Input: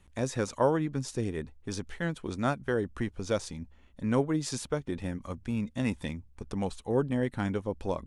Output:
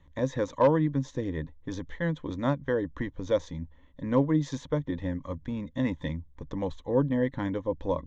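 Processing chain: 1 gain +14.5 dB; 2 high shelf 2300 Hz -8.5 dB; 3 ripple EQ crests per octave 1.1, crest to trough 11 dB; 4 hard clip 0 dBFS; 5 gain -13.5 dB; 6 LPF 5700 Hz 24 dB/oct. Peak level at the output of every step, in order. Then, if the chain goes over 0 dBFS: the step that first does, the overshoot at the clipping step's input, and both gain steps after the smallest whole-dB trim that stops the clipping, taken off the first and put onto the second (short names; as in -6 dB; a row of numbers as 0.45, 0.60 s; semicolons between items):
+1.5, +0.5, +3.5, 0.0, -13.5, -13.5 dBFS; step 1, 3.5 dB; step 1 +10.5 dB, step 5 -9.5 dB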